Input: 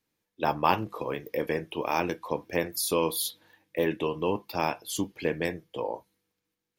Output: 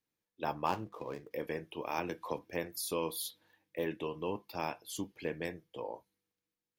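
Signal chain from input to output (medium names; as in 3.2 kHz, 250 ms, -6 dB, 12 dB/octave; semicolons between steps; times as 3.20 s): 0.66–1.31 s: median filter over 15 samples; 1.98–2.39 s: three bands compressed up and down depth 100%; trim -9 dB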